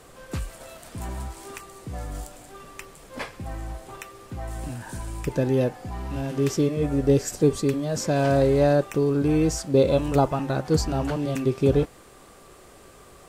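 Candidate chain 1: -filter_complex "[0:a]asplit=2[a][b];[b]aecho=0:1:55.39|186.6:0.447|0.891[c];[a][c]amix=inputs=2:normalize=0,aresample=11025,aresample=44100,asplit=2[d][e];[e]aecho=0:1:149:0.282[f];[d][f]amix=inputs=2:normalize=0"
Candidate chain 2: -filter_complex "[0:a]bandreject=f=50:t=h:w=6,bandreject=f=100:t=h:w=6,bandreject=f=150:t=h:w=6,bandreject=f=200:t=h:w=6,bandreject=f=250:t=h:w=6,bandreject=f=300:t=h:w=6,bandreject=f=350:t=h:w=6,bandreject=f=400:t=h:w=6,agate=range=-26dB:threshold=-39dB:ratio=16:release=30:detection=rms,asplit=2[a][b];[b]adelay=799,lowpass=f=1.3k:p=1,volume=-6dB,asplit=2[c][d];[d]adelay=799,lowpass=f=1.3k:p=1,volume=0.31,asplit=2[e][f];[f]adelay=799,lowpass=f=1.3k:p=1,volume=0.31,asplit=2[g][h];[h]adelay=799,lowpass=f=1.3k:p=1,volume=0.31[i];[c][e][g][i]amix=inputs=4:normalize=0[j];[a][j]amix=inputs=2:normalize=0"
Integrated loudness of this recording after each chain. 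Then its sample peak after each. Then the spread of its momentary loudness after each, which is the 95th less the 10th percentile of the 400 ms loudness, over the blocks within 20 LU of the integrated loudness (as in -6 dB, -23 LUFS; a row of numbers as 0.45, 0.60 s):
-21.0, -23.5 LUFS; -4.0, -8.0 dBFS; 19, 19 LU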